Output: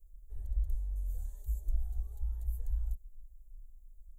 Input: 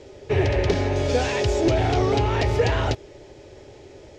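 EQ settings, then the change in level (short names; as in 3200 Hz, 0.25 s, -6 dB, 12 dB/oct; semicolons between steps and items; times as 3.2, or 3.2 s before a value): inverse Chebyshev band-stop 110–5600 Hz, stop band 60 dB; +13.5 dB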